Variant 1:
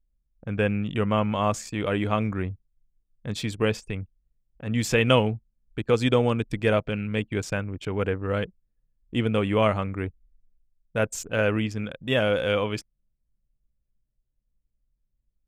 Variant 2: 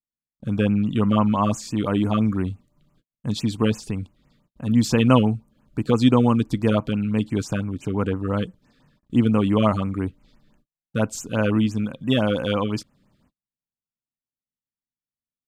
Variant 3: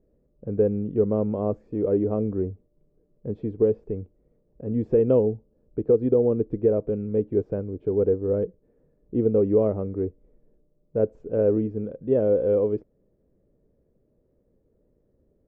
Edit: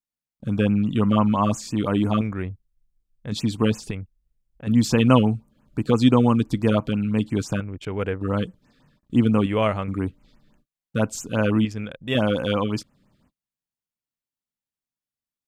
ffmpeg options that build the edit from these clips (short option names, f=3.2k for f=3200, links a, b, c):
-filter_complex "[0:a]asplit=5[a][b][c][d][e];[1:a]asplit=6[f][g][h][i][j][k];[f]atrim=end=2.212[l];[a]atrim=start=2.208:end=3.322[m];[g]atrim=start=3.318:end=3.912[n];[b]atrim=start=3.908:end=4.672[o];[h]atrim=start=4.668:end=7.602[p];[c]atrim=start=7.598:end=8.212[q];[i]atrim=start=8.208:end=9.462[r];[d]atrim=start=9.458:end=9.882[s];[j]atrim=start=9.878:end=11.652[t];[e]atrim=start=11.648:end=12.152[u];[k]atrim=start=12.148[v];[l][m]acrossfade=d=0.004:c1=hsin:c2=hsin[w];[w][n]acrossfade=d=0.004:c1=hsin:c2=hsin[x];[x][o]acrossfade=d=0.004:c1=hsin:c2=hsin[y];[y][p]acrossfade=d=0.004:c1=hsin:c2=hsin[z];[z][q]acrossfade=d=0.004:c1=hsin:c2=hsin[aa];[aa][r]acrossfade=d=0.004:c1=hsin:c2=hsin[ab];[ab][s]acrossfade=d=0.004:c1=hsin:c2=hsin[ac];[ac][t]acrossfade=d=0.004:c1=hsin:c2=hsin[ad];[ad][u]acrossfade=d=0.004:c1=hsin:c2=hsin[ae];[ae][v]acrossfade=d=0.004:c1=hsin:c2=hsin"